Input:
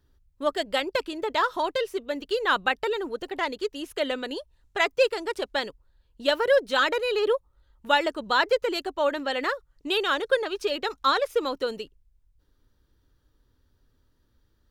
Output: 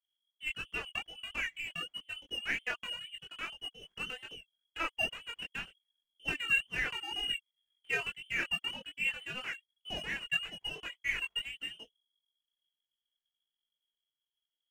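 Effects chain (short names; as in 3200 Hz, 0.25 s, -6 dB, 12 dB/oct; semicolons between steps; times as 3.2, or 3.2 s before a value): inverted band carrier 3300 Hz; power-law curve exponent 1.4; in parallel at -9 dB: soft clip -24.5 dBFS, distortion -8 dB; on the sum: chorus voices 6, 0.46 Hz, delay 21 ms, depth 3.5 ms; gain -6.5 dB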